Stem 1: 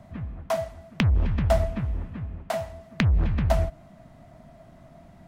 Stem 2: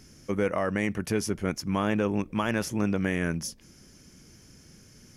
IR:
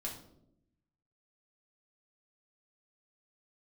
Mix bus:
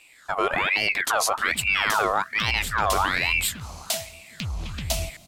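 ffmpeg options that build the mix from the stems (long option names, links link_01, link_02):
-filter_complex "[0:a]aexciter=amount=8.7:drive=7:freq=2500,adelay=1400,volume=-16dB[link_01];[1:a]aeval=exprs='val(0)*sin(2*PI*1700*n/s+1700*0.5/1.2*sin(2*PI*1.2*n/s))':channel_layout=same,volume=2dB[link_02];[link_01][link_02]amix=inputs=2:normalize=0,dynaudnorm=framelen=100:gausssize=11:maxgain=14dB,alimiter=limit=-12dB:level=0:latency=1:release=13"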